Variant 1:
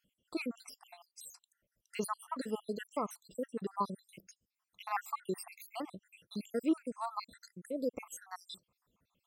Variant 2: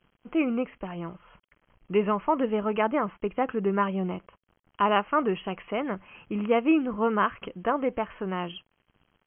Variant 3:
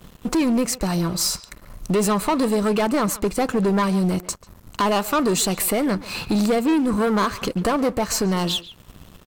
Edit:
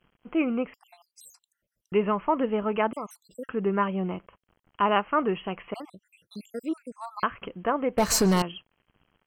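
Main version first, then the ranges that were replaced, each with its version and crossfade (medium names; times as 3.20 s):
2
0.74–1.92 s: from 1
2.93–3.49 s: from 1
5.74–7.23 s: from 1
7.98–8.42 s: from 3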